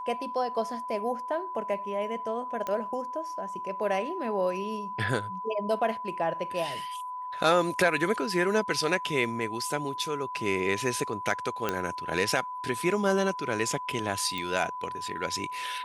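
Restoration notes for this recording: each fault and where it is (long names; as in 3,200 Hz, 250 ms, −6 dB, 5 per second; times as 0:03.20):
whistle 1,000 Hz −34 dBFS
0:02.67: click −19 dBFS
0:11.69: click −12 dBFS
0:14.38: click −19 dBFS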